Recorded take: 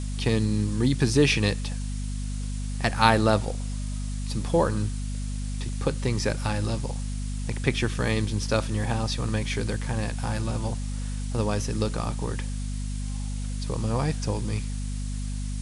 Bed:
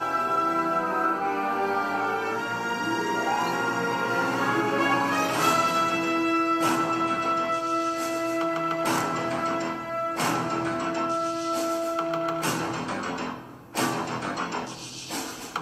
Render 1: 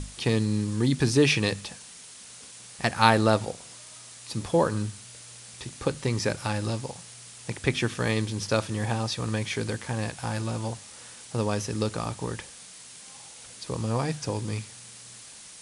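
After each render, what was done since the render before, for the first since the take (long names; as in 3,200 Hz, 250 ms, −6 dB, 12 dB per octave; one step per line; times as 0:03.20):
mains-hum notches 50/100/150/200/250 Hz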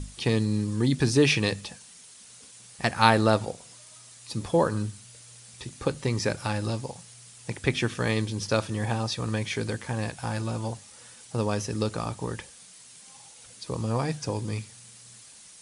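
broadband denoise 6 dB, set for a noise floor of −47 dBFS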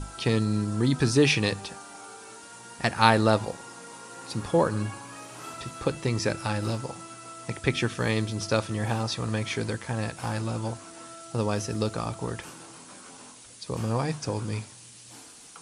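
mix in bed −19 dB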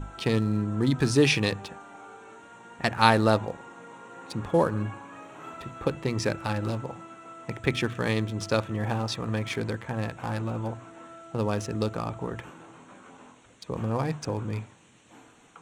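adaptive Wiener filter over 9 samples
mains-hum notches 60/120 Hz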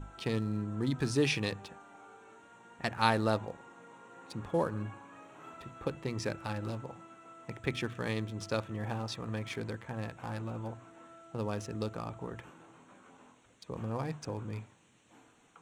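level −8 dB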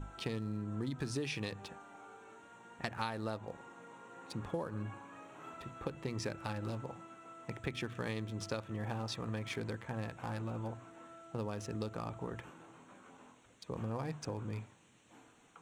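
downward compressor 12 to 1, threshold −34 dBFS, peak gain reduction 14 dB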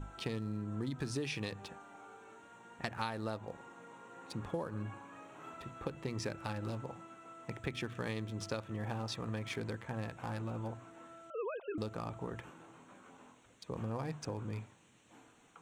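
0:11.30–0:11.78: three sine waves on the formant tracks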